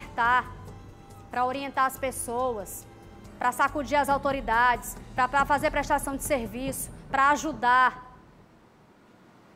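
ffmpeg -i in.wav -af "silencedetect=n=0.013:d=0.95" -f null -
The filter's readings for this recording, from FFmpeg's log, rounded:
silence_start: 8.06
silence_end: 9.55 | silence_duration: 1.49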